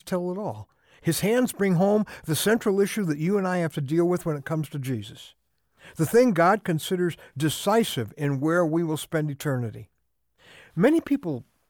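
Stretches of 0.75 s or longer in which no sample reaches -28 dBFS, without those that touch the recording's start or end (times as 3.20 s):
5.00–5.99 s
9.68–10.77 s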